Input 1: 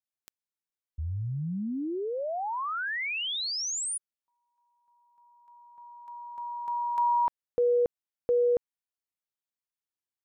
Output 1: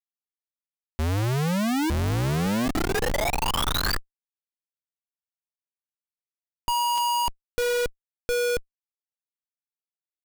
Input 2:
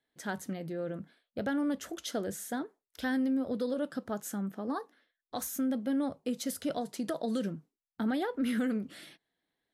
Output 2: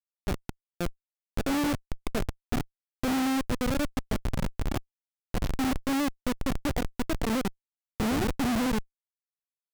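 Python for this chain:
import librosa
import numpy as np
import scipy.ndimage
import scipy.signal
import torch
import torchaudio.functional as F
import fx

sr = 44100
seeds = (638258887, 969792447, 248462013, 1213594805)

y = fx.freq_compress(x, sr, knee_hz=1200.0, ratio=1.5)
y = y + 10.0 ** (-11.5 / 20.0) * np.pad(y, (int(919 * sr / 1000.0), 0))[:len(y)]
y = fx.schmitt(y, sr, flips_db=-29.0)
y = y * librosa.db_to_amplitude(8.5)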